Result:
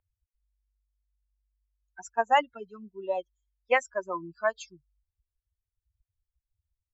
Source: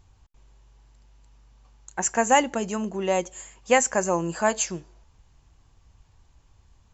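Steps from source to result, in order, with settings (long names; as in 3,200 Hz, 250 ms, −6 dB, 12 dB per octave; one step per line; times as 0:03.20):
spectral dynamics exaggerated over time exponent 3
three-way crossover with the lows and the highs turned down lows −17 dB, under 460 Hz, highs −23 dB, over 3,500 Hz
level +1.5 dB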